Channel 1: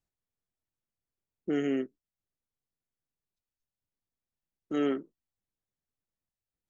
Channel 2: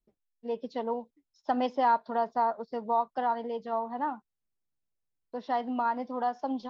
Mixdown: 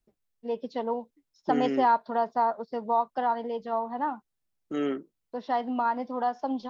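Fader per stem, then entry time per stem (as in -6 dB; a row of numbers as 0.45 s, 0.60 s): -0.5 dB, +2.0 dB; 0.00 s, 0.00 s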